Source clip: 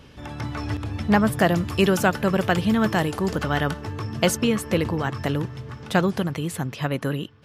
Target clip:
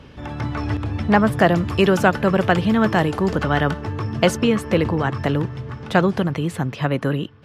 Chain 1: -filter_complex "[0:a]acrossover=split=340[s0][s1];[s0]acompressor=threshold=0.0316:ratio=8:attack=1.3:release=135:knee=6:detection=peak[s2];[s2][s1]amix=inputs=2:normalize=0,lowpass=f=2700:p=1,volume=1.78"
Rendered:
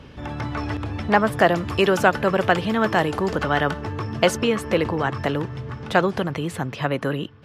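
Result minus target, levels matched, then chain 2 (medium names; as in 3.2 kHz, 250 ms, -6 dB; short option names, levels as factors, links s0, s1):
compression: peak gain reduction +9.5 dB
-filter_complex "[0:a]acrossover=split=340[s0][s1];[s0]acompressor=threshold=0.112:ratio=8:attack=1.3:release=135:knee=6:detection=peak[s2];[s2][s1]amix=inputs=2:normalize=0,lowpass=f=2700:p=1,volume=1.78"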